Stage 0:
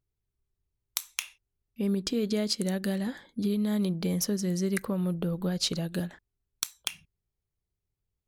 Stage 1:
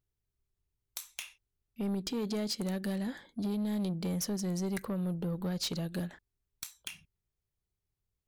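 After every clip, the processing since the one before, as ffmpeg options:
-af "asoftclip=type=tanh:threshold=-26.5dB,volume=-2dB"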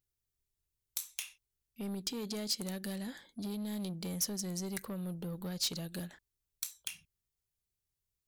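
-af "highshelf=f=3.1k:g=11,volume=-6dB"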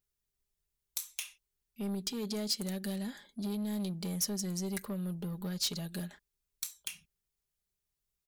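-af "aecho=1:1:4.9:0.48"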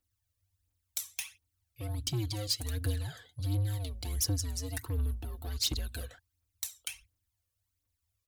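-af "aphaser=in_gain=1:out_gain=1:delay=1.7:decay=0.56:speed=1.4:type=triangular,afreqshift=-110"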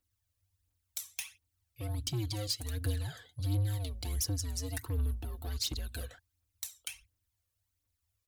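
-af "alimiter=limit=-22dB:level=0:latency=1:release=369"

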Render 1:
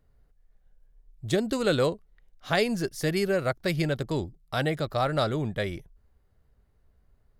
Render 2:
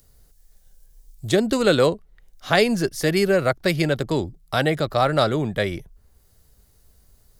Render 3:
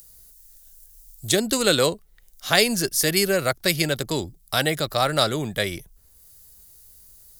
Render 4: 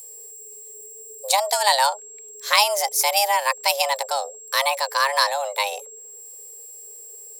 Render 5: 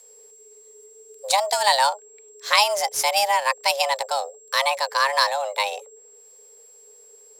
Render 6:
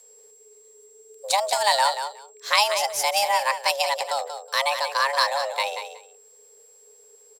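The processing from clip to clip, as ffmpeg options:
-filter_complex "[0:a]acrossover=split=180|4700[a][b][c];[a]alimiter=level_in=10.5dB:limit=-24dB:level=0:latency=1,volume=-10.5dB[d];[c]acompressor=mode=upward:threshold=-53dB:ratio=2.5[e];[d][b][e]amix=inputs=3:normalize=0,volume=7dB"
-af "crystalizer=i=4.5:c=0,volume=-4dB"
-af "afreqshift=410,aeval=exprs='val(0)+0.01*sin(2*PI*7600*n/s)':c=same,volume=1dB"
-af "adynamicsmooth=sensitivity=6:basefreq=4.9k"
-af "aecho=1:1:184|368:0.355|0.0568,volume=-2dB"

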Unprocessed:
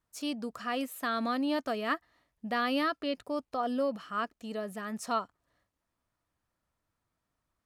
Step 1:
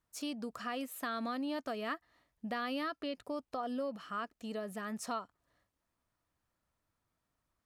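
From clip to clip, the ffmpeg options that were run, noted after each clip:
-af "acompressor=threshold=-36dB:ratio=2.5,volume=-1dB"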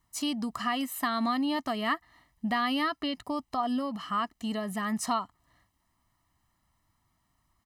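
-af "aecho=1:1:1:0.74,volume=7.5dB"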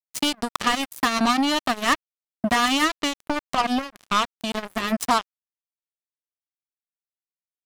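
-filter_complex "[0:a]asplit=2[a][b];[b]acompressor=threshold=-37dB:ratio=20,volume=0dB[c];[a][c]amix=inputs=2:normalize=0,acrusher=bits=3:mix=0:aa=0.5,volume=6dB"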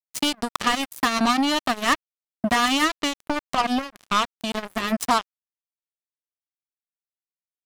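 -af anull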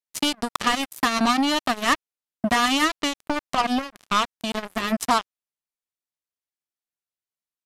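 -af "aresample=32000,aresample=44100"

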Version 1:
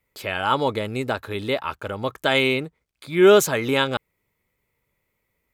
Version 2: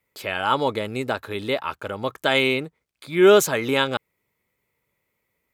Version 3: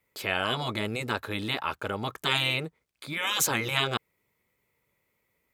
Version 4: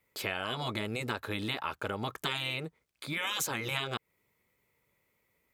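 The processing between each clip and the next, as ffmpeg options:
-af "highpass=f=120:p=1"
-af "afftfilt=real='re*lt(hypot(re,im),0.251)':imag='im*lt(hypot(re,im),0.251)':win_size=1024:overlap=0.75"
-af "acompressor=threshold=-30dB:ratio=6"

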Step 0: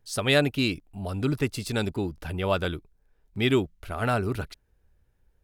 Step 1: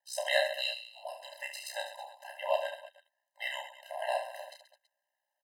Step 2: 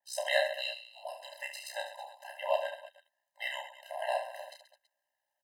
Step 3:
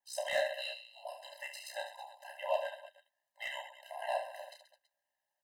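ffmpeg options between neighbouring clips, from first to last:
-af "aeval=exprs='val(0)*sin(2*PI*31*n/s)':c=same,aecho=1:1:30|72|130.8|213.1|328.4:0.631|0.398|0.251|0.158|0.1,afftfilt=real='re*eq(mod(floor(b*sr/1024/530),2),1)':imag='im*eq(mod(floor(b*sr/1024/530),2),1)':win_size=1024:overlap=0.75,volume=-1dB"
-af "adynamicequalizer=threshold=0.00447:dfrequency=3000:dqfactor=0.7:tfrequency=3000:tqfactor=0.7:attack=5:release=100:ratio=0.375:range=4:mode=cutabove:tftype=highshelf"
-filter_complex "[0:a]flanger=delay=0.8:depth=6.5:regen=-66:speed=0.5:shape=sinusoidal,acrossover=split=1100[a][b];[b]asoftclip=type=tanh:threshold=-34dB[c];[a][c]amix=inputs=2:normalize=0,volume=1.5dB"

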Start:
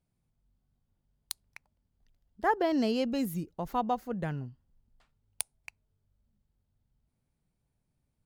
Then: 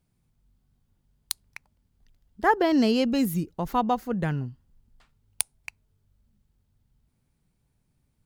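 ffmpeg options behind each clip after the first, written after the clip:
-af "equalizer=f=630:t=o:w=0.77:g=-4,volume=7.5dB"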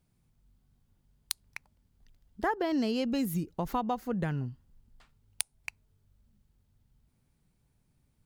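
-af "acompressor=threshold=-29dB:ratio=3"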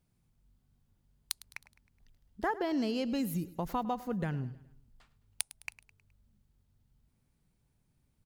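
-af "aecho=1:1:105|210|315|420:0.126|0.0604|0.029|0.0139,volume=-2.5dB"

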